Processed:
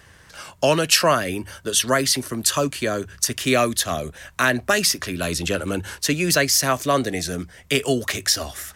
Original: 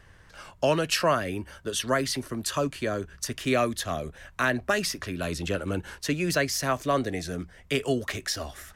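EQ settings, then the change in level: high-pass 53 Hz; treble shelf 3.8 kHz +9 dB; hum notches 50/100 Hz; +5.0 dB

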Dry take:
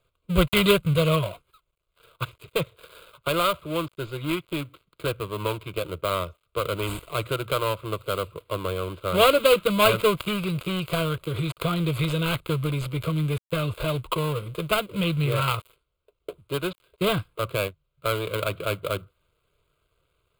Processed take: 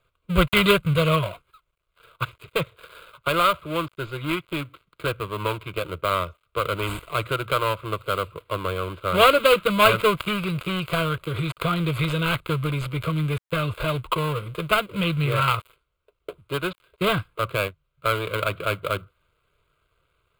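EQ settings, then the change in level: bass shelf 250 Hz +3.5 dB; peaking EQ 1.6 kHz +8 dB 1.8 oct; -2.0 dB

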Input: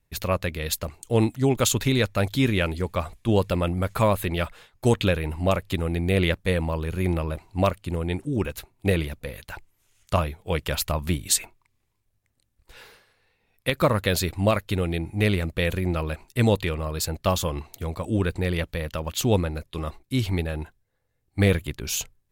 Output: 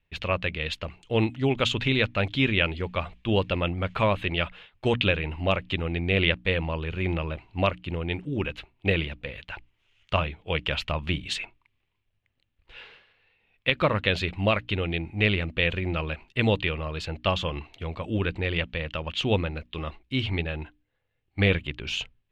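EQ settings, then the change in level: resonant low-pass 2.9 kHz, resonance Q 3.2; hum notches 60/120/180/240/300 Hz; -3.0 dB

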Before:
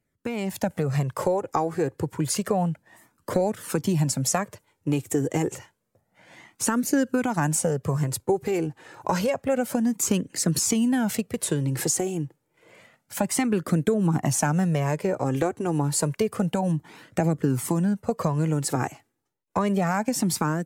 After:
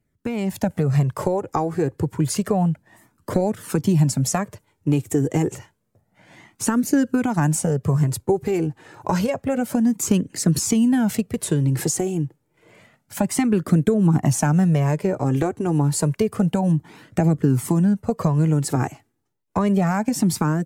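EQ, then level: bass shelf 140 Hz +4 dB; bass shelf 480 Hz +5 dB; band-stop 520 Hz, Q 12; 0.0 dB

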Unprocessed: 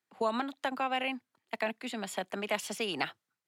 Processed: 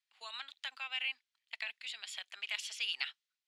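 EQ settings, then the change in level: ladder band-pass 4.2 kHz, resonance 20%; tilt EQ +2 dB/octave; treble shelf 3.8 kHz -10 dB; +13.0 dB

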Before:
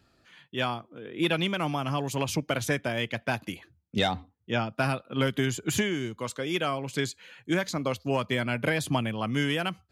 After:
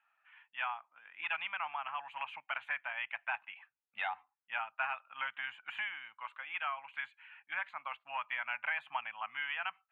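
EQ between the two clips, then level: elliptic band-pass 830–2700 Hz, stop band 40 dB; -4.0 dB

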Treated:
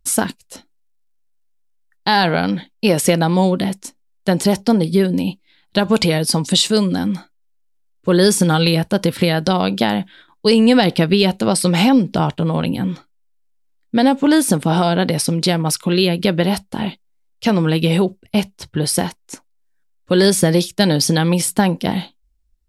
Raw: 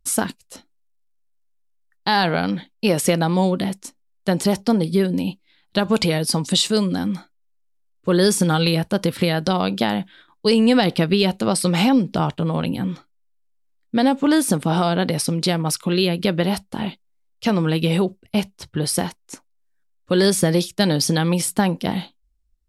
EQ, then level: band-stop 1.2 kHz, Q 15; +3.5 dB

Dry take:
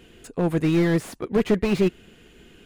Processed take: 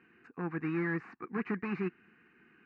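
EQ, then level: cabinet simulation 260–2200 Hz, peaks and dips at 280 Hz -3 dB, 420 Hz -6 dB, 650 Hz -4 dB, 950 Hz -7 dB, 1.4 kHz -6 dB, 2 kHz -7 dB; tilt shelf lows -5.5 dB, about 890 Hz; static phaser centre 1.4 kHz, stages 4; 0.0 dB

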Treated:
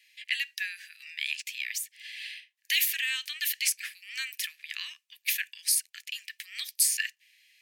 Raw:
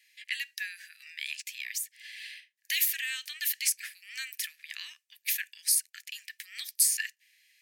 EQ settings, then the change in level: rippled Chebyshev high-pass 750 Hz, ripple 6 dB; dynamic bell 1.3 kHz, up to +4 dB, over -50 dBFS, Q 1.4; +5.0 dB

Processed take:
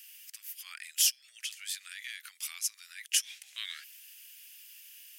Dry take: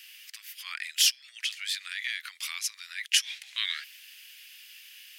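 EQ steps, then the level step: graphic EQ 1/2/4 kHz -12/-9/-11 dB; +3.5 dB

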